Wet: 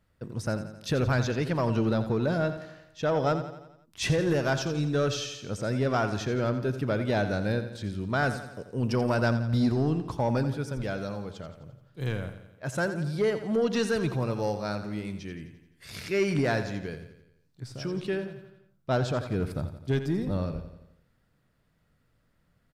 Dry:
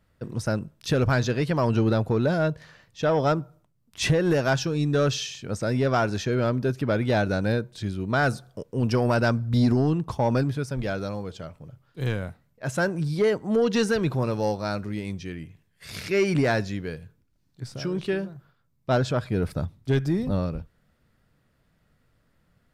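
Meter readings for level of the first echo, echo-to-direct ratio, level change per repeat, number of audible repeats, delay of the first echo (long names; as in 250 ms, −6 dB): −11.0 dB, −9.5 dB, −5.5 dB, 5, 86 ms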